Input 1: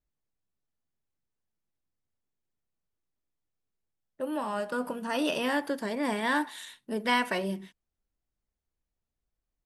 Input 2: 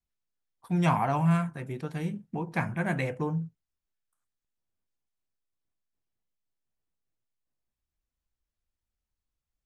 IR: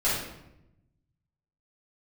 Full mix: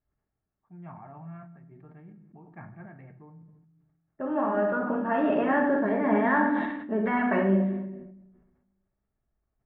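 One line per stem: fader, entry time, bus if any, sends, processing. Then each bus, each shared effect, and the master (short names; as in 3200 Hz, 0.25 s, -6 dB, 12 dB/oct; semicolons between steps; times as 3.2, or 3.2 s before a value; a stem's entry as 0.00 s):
+2.5 dB, 0.00 s, send -10 dB, de-esser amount 100%
-15.0 dB, 0.00 s, send -21 dB, random-step tremolo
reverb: on, RT60 0.85 s, pre-delay 5 ms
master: LPF 1800 Hz 24 dB/oct; notch comb 500 Hz; sustainer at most 48 dB/s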